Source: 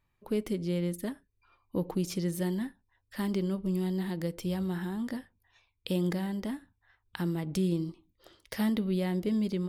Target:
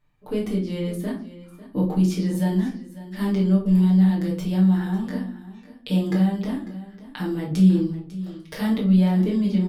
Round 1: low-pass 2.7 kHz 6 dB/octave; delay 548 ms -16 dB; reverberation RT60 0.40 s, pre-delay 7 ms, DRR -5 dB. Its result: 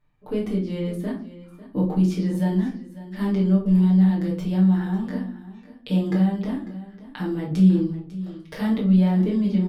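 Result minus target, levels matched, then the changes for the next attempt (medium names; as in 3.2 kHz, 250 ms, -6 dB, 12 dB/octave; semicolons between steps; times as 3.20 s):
8 kHz band -6.5 dB
change: low-pass 7.4 kHz 6 dB/octave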